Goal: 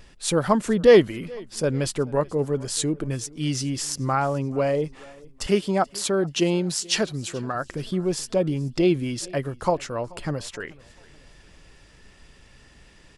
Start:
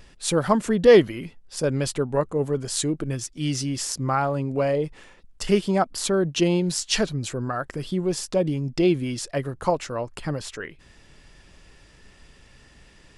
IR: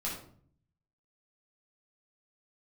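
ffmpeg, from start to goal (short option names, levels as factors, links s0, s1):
-filter_complex "[0:a]asettb=1/sr,asplit=3[s0][s1][s2];[s0]atrim=end=5.464[s3];[s1]atrim=start=5.46:end=7.55,asetpts=PTS-STARTPTS,afade=t=in:d=0.004:c=qsin,afade=t=out:st=2.086:d=0.004:c=qsin,highpass=f=150:p=1[s4];[s2]atrim=start=7.546[s5];[s3][s4]acrossfade=d=0.004:c1=hsin:c2=qsin[s6];[s6][s5]acrossfade=d=0.004:c1=qsin:c2=hsin,aecho=1:1:432|864|1296:0.0668|0.0294|0.0129"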